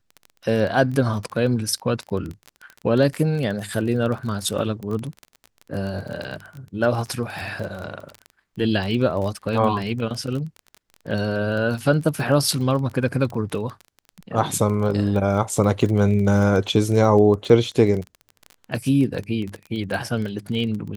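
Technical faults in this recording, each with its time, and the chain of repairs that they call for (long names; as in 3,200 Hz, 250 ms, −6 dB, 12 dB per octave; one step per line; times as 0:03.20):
surface crackle 24 per second −27 dBFS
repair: click removal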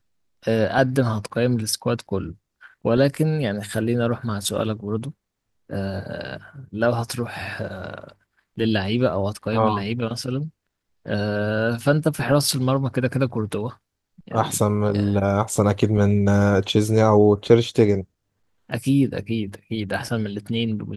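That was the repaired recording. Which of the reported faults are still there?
none of them is left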